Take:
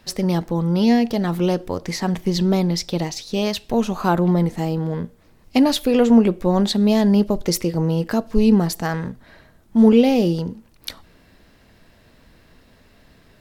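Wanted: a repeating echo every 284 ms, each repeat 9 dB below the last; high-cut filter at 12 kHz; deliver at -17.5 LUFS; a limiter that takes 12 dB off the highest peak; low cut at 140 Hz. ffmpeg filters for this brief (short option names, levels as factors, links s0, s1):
-af "highpass=140,lowpass=12000,alimiter=limit=0.158:level=0:latency=1,aecho=1:1:284|568|852|1136:0.355|0.124|0.0435|0.0152,volume=2.24"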